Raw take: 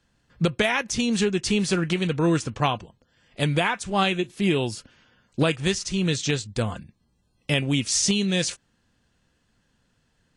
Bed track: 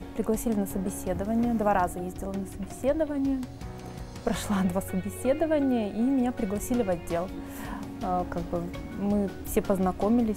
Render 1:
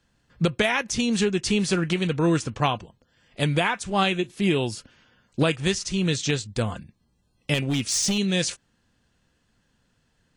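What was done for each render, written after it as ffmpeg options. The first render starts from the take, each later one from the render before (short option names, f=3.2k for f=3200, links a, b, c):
-filter_complex "[0:a]asettb=1/sr,asplit=3[a][b][c];[a]atrim=end=7.544[d];[b]atrim=start=7.54:end=8.18,asetpts=PTS-STARTPTS,afade=t=in:d=0.004:c=qsin,afade=t=out:st=0.636:d=0.004:c=qsin,volume=19.5dB,asoftclip=hard,volume=-19.5dB[e];[c]atrim=start=8.176[f];[d][e]acrossfade=d=0.004:c1=hsin:c2=qsin[g];[g][f]acrossfade=d=0.004:c1=qsin:c2=hsin"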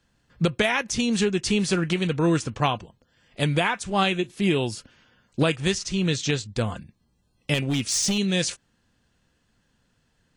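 -filter_complex "[0:a]asettb=1/sr,asplit=3[a][b][c];[a]atrim=end=5.784[d];[b]atrim=start=5.78:end=6.64,asetpts=PTS-STARTPTS,afade=t=in:d=0.004:c=qsin,afade=t=out:st=0.856:d=0.004:c=qsin,lowpass=8.4k[e];[c]atrim=start=6.636[f];[d][e]acrossfade=d=0.004:c1=hsin:c2=qsin[g];[g][f]acrossfade=d=0.004:c1=qsin:c2=hsin"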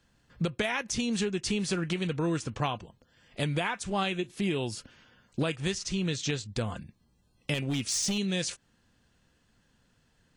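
-af "acompressor=threshold=-32dB:ratio=2"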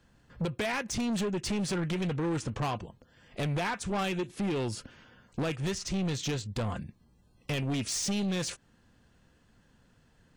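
-filter_complex "[0:a]asplit=2[a][b];[b]adynamicsmooth=sensitivity=1.5:basefreq=2.7k,volume=-2.5dB[c];[a][c]amix=inputs=2:normalize=0,asoftclip=type=tanh:threshold=-27dB"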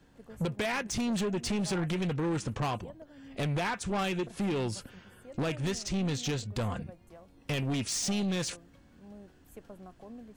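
-filter_complex "[1:a]volume=-23.5dB[a];[0:a][a]amix=inputs=2:normalize=0"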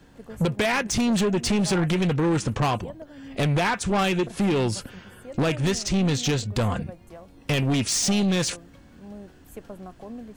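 -af "volume=8.5dB"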